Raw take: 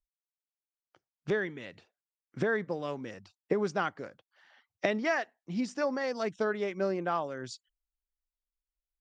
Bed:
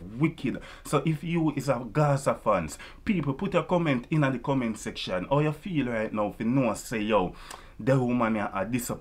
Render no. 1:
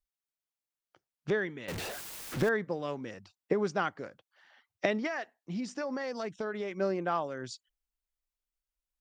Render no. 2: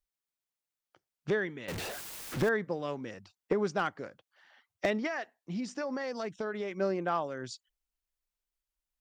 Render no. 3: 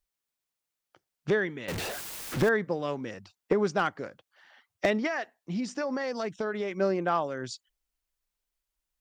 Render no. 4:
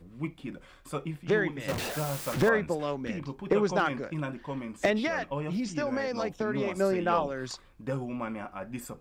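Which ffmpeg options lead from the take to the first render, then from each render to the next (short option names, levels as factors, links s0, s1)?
-filter_complex "[0:a]asettb=1/sr,asplit=3[s0][s1][s2];[s0]atrim=end=1.684[s3];[s1]atrim=start=1.68:end=2.49,asetpts=PTS-STARTPTS,afade=t=in:d=0.004:c=qsin,afade=t=out:st=0.806:d=0.004:c=qsin,aeval=exprs='val(0)+0.5*0.0251*sgn(val(0))':c=same[s4];[s2]atrim=start=2.486[s5];[s3][s4]acrossfade=d=0.004:c1=hsin:c2=qsin[s6];[s6][s5]acrossfade=d=0.004:c1=qsin:c2=hsin,asettb=1/sr,asplit=3[s7][s8][s9];[s7]atrim=end=5.064[s10];[s8]atrim=start=5.06:end=6.72,asetpts=PTS-STARTPTS,afade=t=in:d=0.004:c=qsin,afade=t=out:st=1.656:d=0.004:c=qsin,acompressor=threshold=0.0282:ratio=6:attack=3.2:release=140:knee=1:detection=peak[s11];[s9]atrim=start=6.716[s12];[s10][s11]acrossfade=d=0.004:c1=hsin:c2=qsin[s13];[s13][s12]acrossfade=d=0.004:c1=qsin:c2=hsin"
-af "asoftclip=type=hard:threshold=0.106"
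-af "volume=1.58"
-filter_complex "[1:a]volume=0.335[s0];[0:a][s0]amix=inputs=2:normalize=0"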